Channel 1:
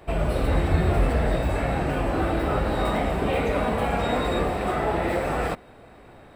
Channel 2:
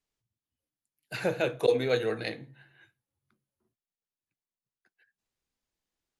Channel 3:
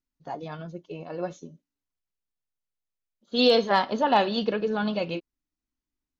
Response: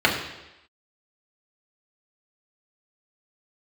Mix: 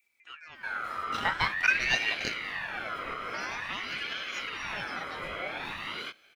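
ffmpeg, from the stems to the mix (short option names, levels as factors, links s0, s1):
-filter_complex "[0:a]acrusher=bits=9:mix=0:aa=0.000001,aecho=1:1:1.1:0.79,flanger=delay=18.5:depth=6.8:speed=2.1,adelay=550,volume=0.316[s0];[1:a]lowpass=6100,aeval=exprs='sgn(val(0))*max(abs(val(0))-0.00501,0)':c=same,volume=1.12[s1];[2:a]acompressor=threshold=0.0631:ratio=6,volume=0.335[s2];[s0][s2]amix=inputs=2:normalize=0,alimiter=limit=0.0631:level=0:latency=1:release=223,volume=1[s3];[s1][s3]amix=inputs=2:normalize=0,adynamicequalizer=threshold=0.00562:dfrequency=1600:dqfactor=0.72:tfrequency=1600:tqfactor=0.72:attack=5:release=100:ratio=0.375:range=2.5:mode=boostabove:tftype=bell,acompressor=mode=upward:threshold=0.00282:ratio=2.5,aeval=exprs='val(0)*sin(2*PI*1800*n/s+1800*0.3/0.48*sin(2*PI*0.48*n/s))':c=same"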